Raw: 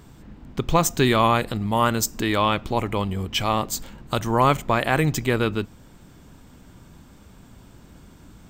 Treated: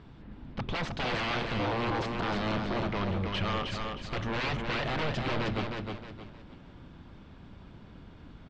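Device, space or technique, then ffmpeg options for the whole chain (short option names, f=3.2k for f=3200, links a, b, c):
synthesiser wavefolder: -filter_complex "[0:a]asettb=1/sr,asplit=3[a][b][c];[a]atrim=end=1.594[d];[b]atrim=start=1.59:end=2.87,asetpts=PTS-STARTPTS,afade=t=in:d=0.004:c=qsin,afade=t=out:st=1.276:d=0.004:c=qsin,equalizer=f=125:t=o:w=1:g=5,equalizer=f=250:t=o:w=1:g=12,equalizer=f=500:t=o:w=1:g=-7,equalizer=f=1k:t=o:w=1:g=-11,equalizer=f=2k:t=o:w=1:g=-6,equalizer=f=8k:t=o:w=1:g=4[e];[c]atrim=start=2.866[f];[d][e]acrossfade=d=0.004:c1=hsin:c2=qsin[g];[g][f]acrossfade=d=0.004:c1=qsin:c2=hsin,aeval=exprs='0.0708*(abs(mod(val(0)/0.0708+3,4)-2)-1)':c=same,lowpass=f=4.1k:w=0.5412,lowpass=f=4.1k:w=1.3066,aecho=1:1:312|624|936|1248:0.596|0.203|0.0689|0.0234,volume=-3.5dB"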